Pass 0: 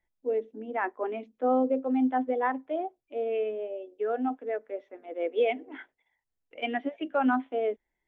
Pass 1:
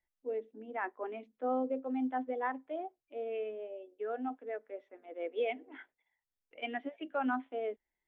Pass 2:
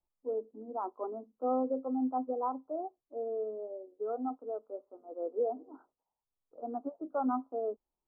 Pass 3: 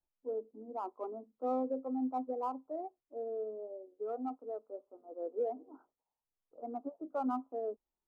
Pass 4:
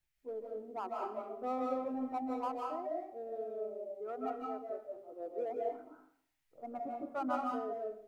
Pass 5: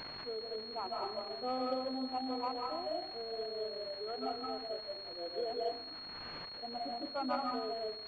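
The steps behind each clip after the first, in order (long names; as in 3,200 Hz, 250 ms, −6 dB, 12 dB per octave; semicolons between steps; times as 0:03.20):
parametric band 1,800 Hz +3 dB 2.5 octaves; level −9 dB
Butterworth low-pass 1,300 Hz 96 dB per octave; level +2 dB
adaptive Wiener filter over 9 samples; level −3 dB
octave-band graphic EQ 125/250/500/1,000/2,000 Hz +10/−10/−8/−7/+10 dB; convolution reverb RT60 0.60 s, pre-delay 115 ms, DRR −1.5 dB; level +5.5 dB
spike at every zero crossing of −37.5 dBFS; high-pass filter 200 Hz; switching amplifier with a slow clock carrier 4,300 Hz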